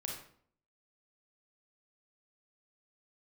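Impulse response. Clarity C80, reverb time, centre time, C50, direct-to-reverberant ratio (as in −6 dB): 7.0 dB, 0.55 s, 39 ms, 3.0 dB, −1.0 dB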